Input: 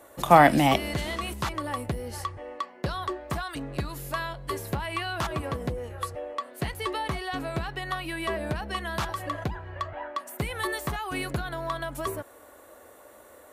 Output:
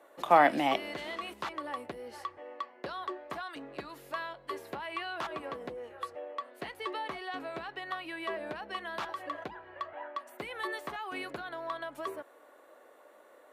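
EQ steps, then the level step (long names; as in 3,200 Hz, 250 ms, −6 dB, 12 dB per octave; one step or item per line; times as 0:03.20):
three-way crossover with the lows and the highs turned down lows −24 dB, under 250 Hz, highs −12 dB, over 4,400 Hz
−5.5 dB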